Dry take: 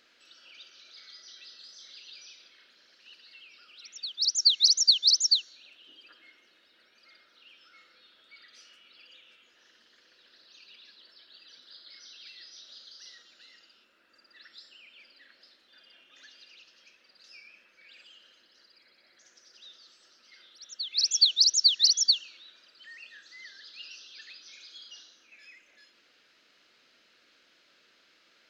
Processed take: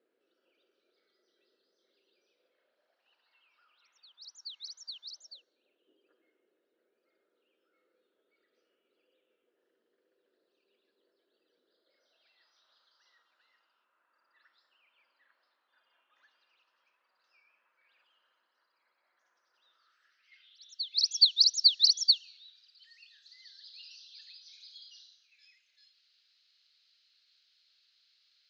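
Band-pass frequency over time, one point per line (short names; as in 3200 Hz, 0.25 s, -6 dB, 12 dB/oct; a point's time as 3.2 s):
band-pass, Q 3.4
2.2 s 410 Hz
3.43 s 980 Hz
5.06 s 980 Hz
5.51 s 420 Hz
11.76 s 420 Hz
12.52 s 1000 Hz
19.68 s 1000 Hz
20.77 s 4300 Hz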